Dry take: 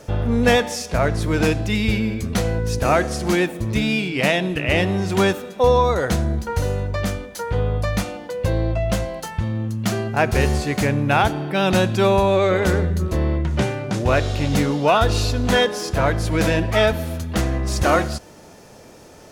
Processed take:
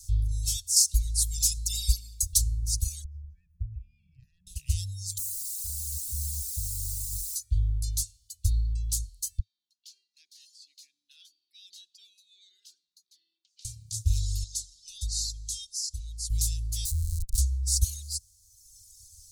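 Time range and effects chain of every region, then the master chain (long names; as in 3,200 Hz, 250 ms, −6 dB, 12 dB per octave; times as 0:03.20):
0:00.76–0:02.38: high-shelf EQ 3,400 Hz +6 dB + comb filter 5.1 ms, depth 76%
0:03.04–0:04.47: inverse Chebyshev low-pass filter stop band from 3,500 Hz + comb filter 1.2 ms, depth 99% + downward compressor 10 to 1, threshold −23 dBFS
0:05.18–0:07.36: low-pass filter 1,100 Hz 24 dB per octave + downward compressor 12 to 1, threshold −25 dBFS + bit-depth reduction 6 bits, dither triangular
0:09.39–0:13.65: Butterworth high-pass 310 Hz 48 dB per octave + high-frequency loss of the air 330 metres + phaser whose notches keep moving one way falling 1.4 Hz
0:14.44–0:16.30: low-pass filter 7,300 Hz + low-shelf EQ 160 Hz −9 dB + phaser with its sweep stopped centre 490 Hz, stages 6
0:16.85–0:17.38: low-pass filter 4,500 Hz 24 dB per octave + comparator with hysteresis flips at −23 dBFS
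whole clip: Chebyshev band-stop filter 100–4,100 Hz, order 4; reverb reduction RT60 1.4 s; graphic EQ with 10 bands 125 Hz −10 dB, 250 Hz −11 dB, 500 Hz +11 dB, 1,000 Hz −5 dB, 2,000 Hz −9 dB, 4,000 Hz −7 dB, 8,000 Hz +6 dB; level +4 dB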